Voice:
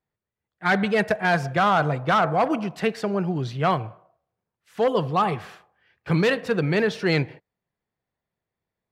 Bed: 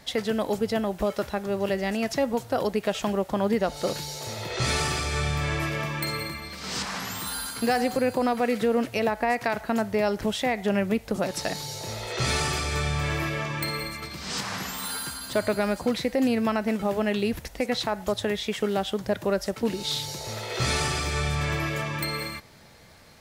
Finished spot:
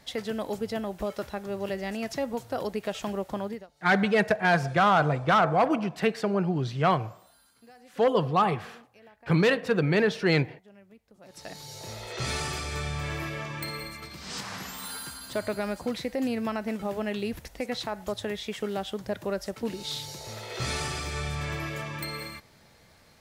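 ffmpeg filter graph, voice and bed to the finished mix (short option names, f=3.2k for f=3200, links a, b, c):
-filter_complex "[0:a]adelay=3200,volume=-1.5dB[a];[1:a]volume=18.5dB,afade=t=out:st=3.34:d=0.33:silence=0.0630957,afade=t=in:st=11.2:d=0.66:silence=0.0630957[b];[a][b]amix=inputs=2:normalize=0"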